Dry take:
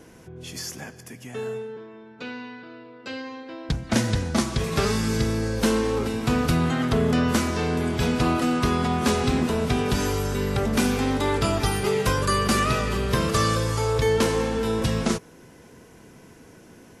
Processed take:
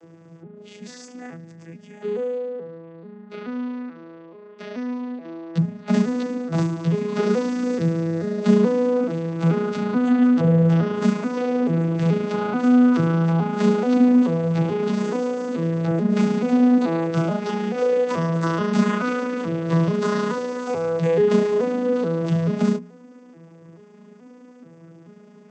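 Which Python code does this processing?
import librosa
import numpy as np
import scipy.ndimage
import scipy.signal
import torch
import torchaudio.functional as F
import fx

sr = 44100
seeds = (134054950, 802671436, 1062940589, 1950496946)

y = fx.vocoder_arp(x, sr, chord='major triad', root=52, every_ms=288)
y = fx.hum_notches(y, sr, base_hz=60, count=4)
y = fx.stretch_grains(y, sr, factor=1.5, grain_ms=72.0)
y = F.gain(torch.from_numpy(y), 5.5).numpy()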